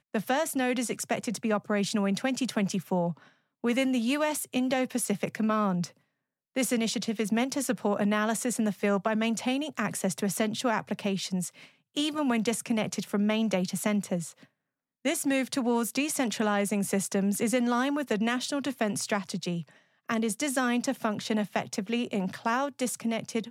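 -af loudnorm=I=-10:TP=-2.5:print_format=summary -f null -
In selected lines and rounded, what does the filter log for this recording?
Input Integrated:    -29.2 LUFS
Input True Peak:     -14.1 dBTP
Input LRA:             2.1 LU
Input Threshold:     -39.4 LUFS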